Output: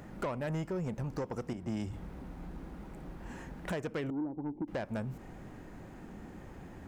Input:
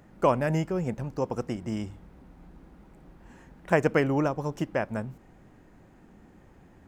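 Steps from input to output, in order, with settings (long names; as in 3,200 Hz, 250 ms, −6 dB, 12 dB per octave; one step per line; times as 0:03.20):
0:04.10–0:04.68: formant resonators in series u
downward compressor 5 to 1, threshold −37 dBFS, peak gain reduction 18 dB
soft clipping −36 dBFS, distortion −12 dB
0:01.53–0:01.93: multiband upward and downward expander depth 100%
level +6.5 dB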